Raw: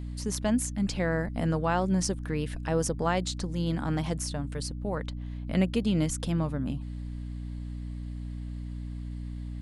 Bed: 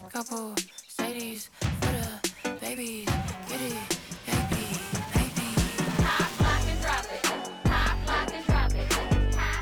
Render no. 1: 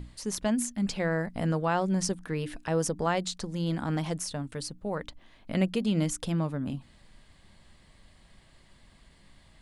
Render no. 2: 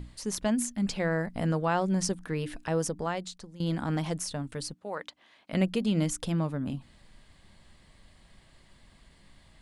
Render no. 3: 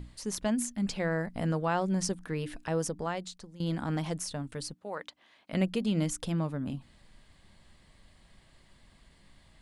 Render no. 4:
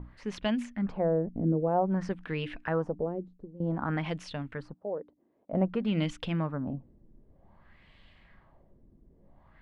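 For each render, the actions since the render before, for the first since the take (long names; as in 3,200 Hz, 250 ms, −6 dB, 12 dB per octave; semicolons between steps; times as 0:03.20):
mains-hum notches 60/120/180/240/300 Hz
0:02.64–0:03.60: fade out, to −15.5 dB; 0:04.74–0:05.53: meter weighting curve A
level −2 dB
floating-point word with a short mantissa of 6 bits; auto-filter low-pass sine 0.53 Hz 340–3,000 Hz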